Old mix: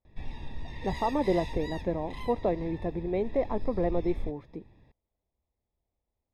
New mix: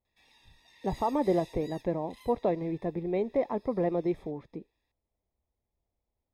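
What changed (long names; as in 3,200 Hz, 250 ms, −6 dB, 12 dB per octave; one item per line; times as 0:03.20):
background: add first difference
reverb: on, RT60 1.6 s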